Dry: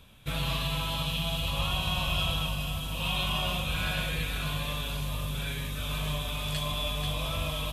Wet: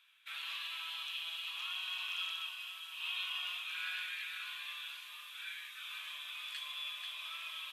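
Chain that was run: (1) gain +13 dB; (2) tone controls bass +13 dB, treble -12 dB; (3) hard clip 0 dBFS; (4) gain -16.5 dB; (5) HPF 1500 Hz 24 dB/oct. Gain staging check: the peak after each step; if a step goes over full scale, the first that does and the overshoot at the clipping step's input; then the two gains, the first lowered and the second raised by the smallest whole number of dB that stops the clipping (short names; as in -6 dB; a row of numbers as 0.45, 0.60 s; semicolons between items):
-4.0, +4.5, 0.0, -16.5, -26.5 dBFS; step 2, 4.5 dB; step 1 +8 dB, step 4 -11.5 dB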